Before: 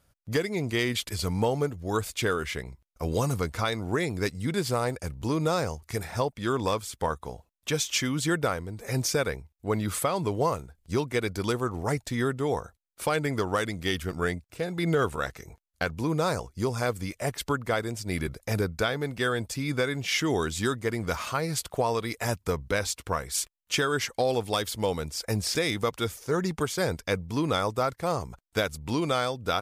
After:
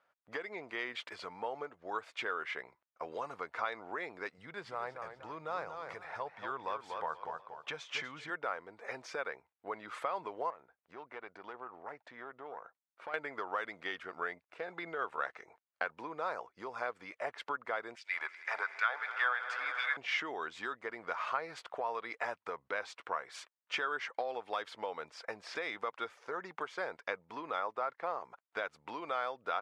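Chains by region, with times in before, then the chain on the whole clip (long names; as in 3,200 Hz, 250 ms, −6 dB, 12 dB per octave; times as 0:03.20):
0:04.38–0:08.30: low shelf with overshoot 190 Hz +6.5 dB, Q 1.5 + feedback echo with a swinging delay time 240 ms, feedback 31%, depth 111 cents, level −10 dB
0:10.50–0:13.14: low-pass filter 2,600 Hz 6 dB per octave + downward compressor 3 to 1, threshold −34 dBFS + tube saturation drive 24 dB, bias 0.7
0:17.95–0:19.97: auto-filter high-pass sine 2.8 Hz 800–3,000 Hz + echo that builds up and dies away 80 ms, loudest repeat 5, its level −18 dB
0:27.60–0:28.24: high-pass filter 120 Hz + high-frequency loss of the air 53 metres
whole clip: low-pass filter 1,700 Hz 12 dB per octave; downward compressor 4 to 1, threshold −30 dBFS; high-pass filter 810 Hz 12 dB per octave; level +2.5 dB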